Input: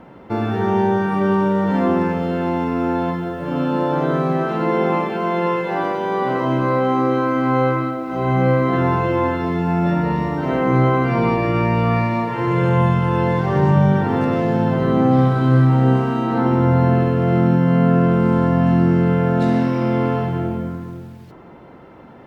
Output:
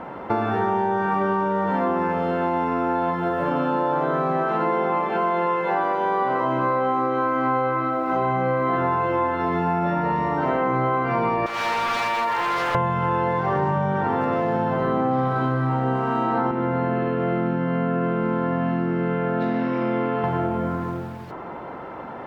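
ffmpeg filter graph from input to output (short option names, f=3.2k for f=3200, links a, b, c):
-filter_complex "[0:a]asettb=1/sr,asplit=3[a][b][c];[a]atrim=end=11.464[d];[b]atrim=start=11.46:end=12.75,asetpts=PTS-STARTPTS,afade=t=in:d=0.004:c=qsin,afade=t=out:st=1.286:d=0.004:c=qsin,highpass=f=1.3k:p=1,aemphasis=mode=production:type=cd,aeval=exprs='0.0531*(abs(mod(val(0)/0.0531+3,4)-2)-1)':c=same[e];[c]atrim=start=12.746[f];[d][e]acrossfade=d=0.004:c1=hsin:c2=qsin[g];[g][f]acrossfade=d=0.004:c1=qsin:c2=hsin,asettb=1/sr,asplit=3[h][i][j];[h]atrim=end=16.514[k];[i]atrim=start=16.51:end=20.24,asetpts=PTS-STARTPTS,afade=t=in:d=0.004:c=qsin,afade=t=out:st=3.726:d=0.004:c=qsin,highpass=180,lowpass=3.4k,equalizer=f=870:t=o:w=1.6:g=-8.5[l];[j]atrim=start=20.236[m];[k][l]acrossfade=d=0.004:c1=hsin:c2=qsin[n];[n][m]acrossfade=d=0.004:c1=qsin:c2=hsin,equalizer=f=1k:t=o:w=2.6:g=12,acompressor=threshold=-20dB:ratio=6"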